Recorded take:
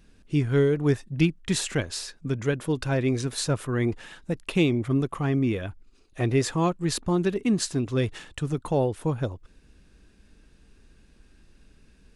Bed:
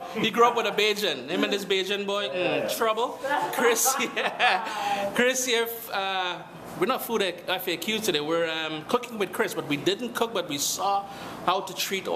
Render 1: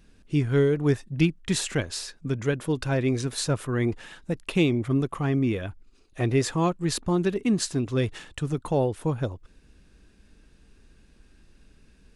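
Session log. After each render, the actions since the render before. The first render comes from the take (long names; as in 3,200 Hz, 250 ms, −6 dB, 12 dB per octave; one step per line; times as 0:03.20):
no processing that can be heard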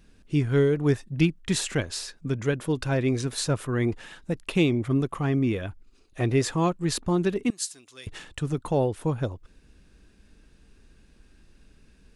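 0:07.50–0:08.07: first difference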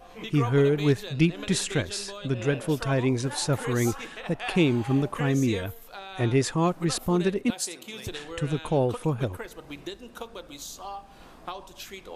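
mix in bed −13 dB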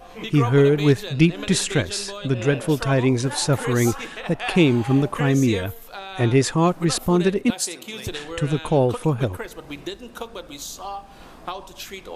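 level +5.5 dB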